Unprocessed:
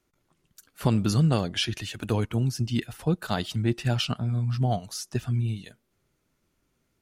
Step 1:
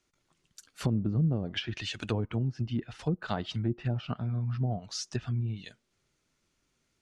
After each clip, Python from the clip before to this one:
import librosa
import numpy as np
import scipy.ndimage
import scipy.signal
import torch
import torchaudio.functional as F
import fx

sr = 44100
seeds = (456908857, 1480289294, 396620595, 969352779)

y = fx.env_lowpass_down(x, sr, base_hz=400.0, full_db=-19.5)
y = scipy.signal.sosfilt(scipy.signal.cheby1(2, 1.0, 6900.0, 'lowpass', fs=sr, output='sos'), y)
y = fx.tilt_shelf(y, sr, db=-4.0, hz=1500.0)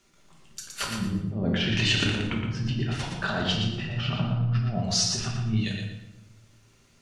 y = fx.over_compress(x, sr, threshold_db=-35.0, ratio=-0.5)
y = fx.echo_feedback(y, sr, ms=117, feedback_pct=28, wet_db=-5.5)
y = fx.room_shoebox(y, sr, seeds[0], volume_m3=260.0, walls='mixed', distance_m=1.2)
y = y * librosa.db_to_amplitude(4.5)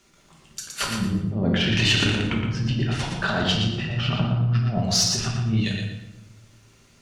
y = fx.diode_clip(x, sr, knee_db=-15.5)
y = y * librosa.db_to_amplitude(5.0)